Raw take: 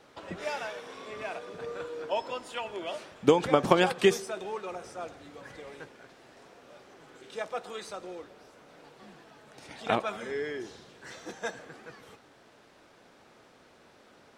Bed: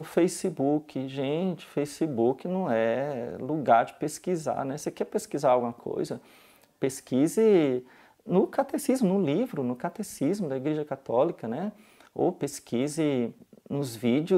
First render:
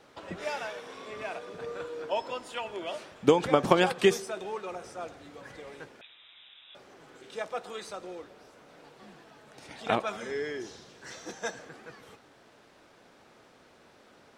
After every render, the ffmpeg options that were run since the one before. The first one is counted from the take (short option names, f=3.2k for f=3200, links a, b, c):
-filter_complex "[0:a]asettb=1/sr,asplit=3[a][b][c];[a]atrim=end=6.014[d];[b]atrim=start=6.01:end=6.75,asetpts=PTS-STARTPTS,afade=t=in:d=0.004:c=qsin,afade=t=out:st=0.736:d=0.004:c=qsin,lowpass=f=3.4k:t=q:w=0.5098,lowpass=f=3.4k:t=q:w=0.6013,lowpass=f=3.4k:t=q:w=0.9,lowpass=f=3.4k:t=q:w=2.563,afreqshift=-4000[e];[c]atrim=start=6.746[f];[d][e]acrossfade=d=0.004:c1=hsin:c2=qsin[g];[g][f]acrossfade=d=0.004:c1=qsin:c2=hsin,asettb=1/sr,asplit=3[h][i][j];[h]atrim=end=10.074[k];[i]atrim=start=10.07:end=11.69,asetpts=PTS-STARTPTS,afade=t=in:d=0.004:c=qsin,afade=t=out:st=1.616:d=0.004:c=qsin,equalizer=f=5.8k:w=2:g=5.5[l];[j]atrim=start=11.686[m];[k][l]acrossfade=d=0.004:c1=hsin:c2=qsin[n];[n][m]acrossfade=d=0.004:c1=qsin:c2=hsin"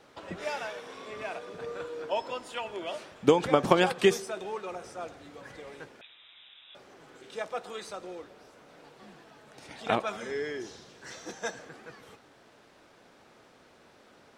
-af anull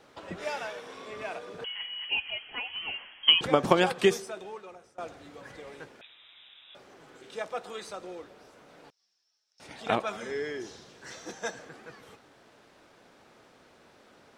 -filter_complex "[0:a]asettb=1/sr,asplit=3[a][b][c];[a]atrim=end=1.644[d];[b]atrim=start=1.64:end=3.41,asetpts=PTS-STARTPTS,afade=t=in:d=0.004:c=qsin,afade=t=out:st=1.766:d=0.004:c=qsin,lowpass=f=2.9k:t=q:w=0.5098,lowpass=f=2.9k:t=q:w=0.6013,lowpass=f=2.9k:t=q:w=0.9,lowpass=f=2.9k:t=q:w=2.563,afreqshift=-3400[e];[c]atrim=start=3.406[f];[d][e]acrossfade=d=0.004:c1=hsin:c2=qsin[g];[g][f]acrossfade=d=0.004:c1=qsin:c2=hsin,asettb=1/sr,asplit=3[h][i][j];[h]atrim=end=8.904[k];[i]atrim=start=8.9:end=9.6,asetpts=PTS-STARTPTS,afade=t=in:d=0.004:c=qsin,afade=t=out:st=0.696:d=0.004:c=qsin,bandpass=f=5.4k:t=q:w=12[l];[j]atrim=start=9.596[m];[k][l]acrossfade=d=0.004:c1=hsin:c2=qsin[n];[n][m]acrossfade=d=0.004:c1=qsin:c2=hsin,asplit=2[o][p];[o]atrim=end=4.98,asetpts=PTS-STARTPTS,afade=t=out:st=4.03:d=0.95:silence=0.0944061[q];[p]atrim=start=4.98,asetpts=PTS-STARTPTS,afade=t=in:d=0.004:c=hsin:silence=0.0944061[r];[q][r]concat=n=2:v=0:a=1"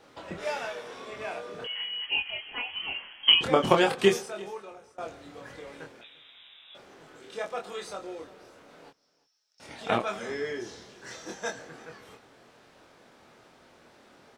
-filter_complex "[0:a]asplit=2[a][b];[b]adelay=25,volume=-4dB[c];[a][c]amix=inputs=2:normalize=0,aecho=1:1:344:0.0794"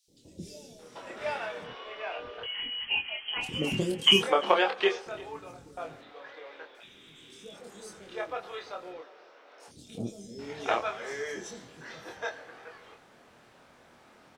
-filter_complex "[0:a]acrossover=split=370|4700[a][b][c];[a]adelay=80[d];[b]adelay=790[e];[d][e][c]amix=inputs=3:normalize=0"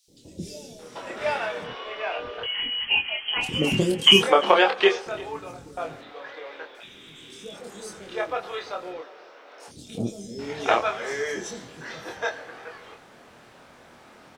-af "volume=7dB,alimiter=limit=-3dB:level=0:latency=1"